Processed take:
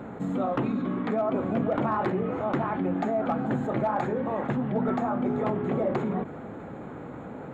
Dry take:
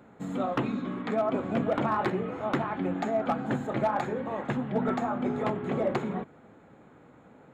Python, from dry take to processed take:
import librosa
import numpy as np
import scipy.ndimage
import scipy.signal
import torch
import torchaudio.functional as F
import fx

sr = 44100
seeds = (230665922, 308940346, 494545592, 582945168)

y = fx.high_shelf(x, sr, hz=2100.0, db=-10.0)
y = fx.env_flatten(y, sr, amount_pct=50)